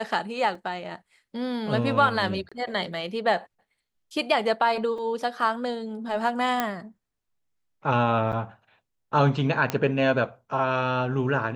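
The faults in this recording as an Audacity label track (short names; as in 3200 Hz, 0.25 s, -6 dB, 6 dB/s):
0.550000	0.550000	gap 3.4 ms
2.490000	2.520000	gap 26 ms
4.980000	4.980000	gap 3.2 ms
6.600000	6.600000	pop -10 dBFS
8.320000	8.330000	gap 8.4 ms
9.700000	9.700000	pop -10 dBFS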